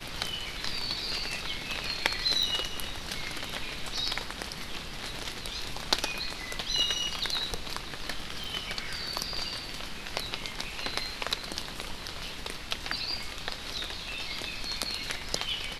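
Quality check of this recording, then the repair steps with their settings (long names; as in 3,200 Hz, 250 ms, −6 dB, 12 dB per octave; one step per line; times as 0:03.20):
0:02.43: click
0:08.44: click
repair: click removal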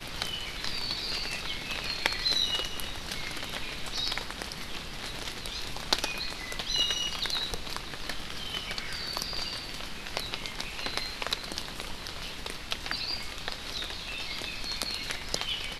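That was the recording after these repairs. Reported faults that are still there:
none of them is left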